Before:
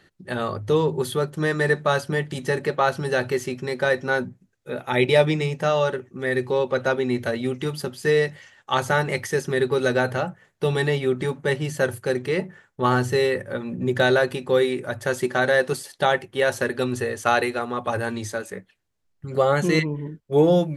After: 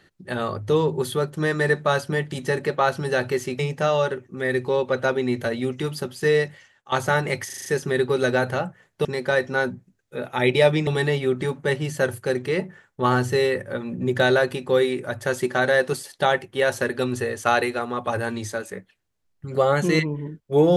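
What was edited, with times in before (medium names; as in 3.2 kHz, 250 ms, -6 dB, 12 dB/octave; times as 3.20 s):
3.59–5.41 s: move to 10.67 s
8.23–8.74 s: fade out, to -15 dB
9.28 s: stutter 0.04 s, 6 plays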